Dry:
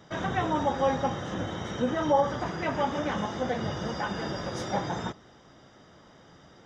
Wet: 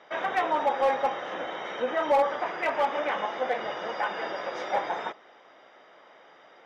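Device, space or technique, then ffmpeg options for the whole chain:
megaphone: -af "highpass=540,lowpass=3500,equalizer=f=2300:t=o:w=0.56:g=8,asoftclip=type=hard:threshold=0.0794,equalizer=f=590:t=o:w=1.9:g=5.5"

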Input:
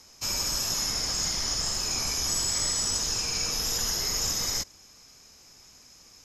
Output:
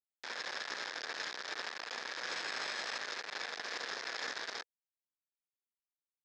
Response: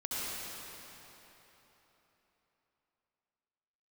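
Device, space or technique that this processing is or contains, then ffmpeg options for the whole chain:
hand-held game console: -af "highpass=f=49:w=0.5412,highpass=f=49:w=1.3066,acrusher=bits=3:mix=0:aa=0.000001,highpass=430,equalizer=f=480:t=q:w=4:g=4,equalizer=f=1700:t=q:w=4:g=9,equalizer=f=2900:t=q:w=4:g=-5,lowpass=f=4300:w=0.5412,lowpass=f=4300:w=1.3066,volume=0.562"

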